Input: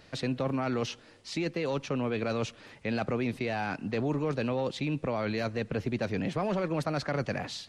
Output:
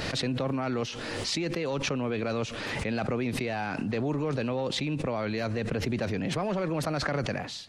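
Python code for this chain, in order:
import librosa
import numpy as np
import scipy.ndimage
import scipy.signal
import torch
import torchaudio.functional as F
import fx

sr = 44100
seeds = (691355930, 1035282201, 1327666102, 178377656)

y = fx.pre_swell(x, sr, db_per_s=22.0)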